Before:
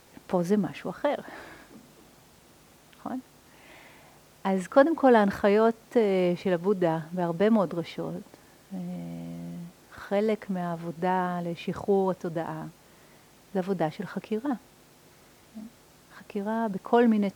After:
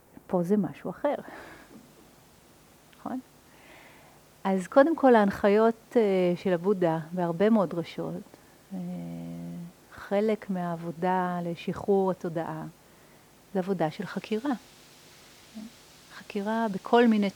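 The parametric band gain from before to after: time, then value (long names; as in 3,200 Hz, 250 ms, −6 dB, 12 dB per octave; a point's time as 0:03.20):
parametric band 4,000 Hz 2.2 octaves
0:00.90 −11.5 dB
0:01.48 −1.5 dB
0:13.73 −1.5 dB
0:14.25 +8 dB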